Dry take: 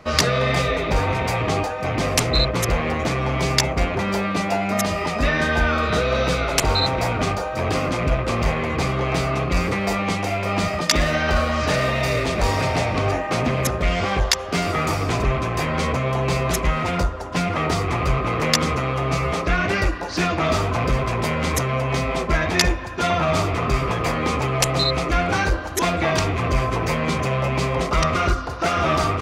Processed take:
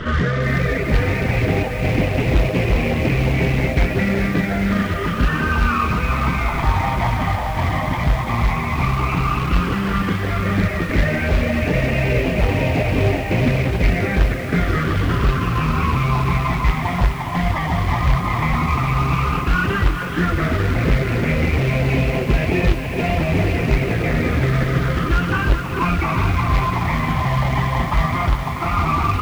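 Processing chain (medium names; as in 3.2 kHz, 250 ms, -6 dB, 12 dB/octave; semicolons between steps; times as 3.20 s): one-bit delta coder 16 kbps, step -24.5 dBFS; de-hum 315.3 Hz, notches 35; reverb removal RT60 0.73 s; peak limiter -14.5 dBFS, peak gain reduction 5 dB; phase shifter stages 12, 0.1 Hz, lowest notch 450–1300 Hz; companded quantiser 4-bit; distance through air 190 m; echo that smears into a reverb 924 ms, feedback 40%, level -11.5 dB; bit-crushed delay 417 ms, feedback 55%, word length 7-bit, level -9 dB; trim +7 dB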